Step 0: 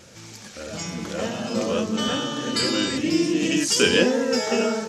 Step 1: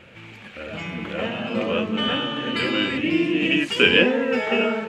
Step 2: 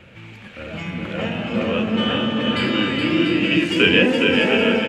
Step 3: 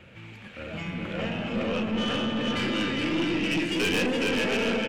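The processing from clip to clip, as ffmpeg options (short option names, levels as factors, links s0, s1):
-af "highshelf=f=3900:t=q:w=3:g=-14"
-filter_complex "[0:a]aecho=1:1:420|693|870.4|985.8|1061:0.631|0.398|0.251|0.158|0.1,acrossover=split=220|2500[s0][s1][s2];[s0]acontrast=35[s3];[s3][s1][s2]amix=inputs=3:normalize=0"
-af "aeval=exprs='(tanh(7.94*val(0)+0.25)-tanh(0.25))/7.94':c=same,volume=0.631"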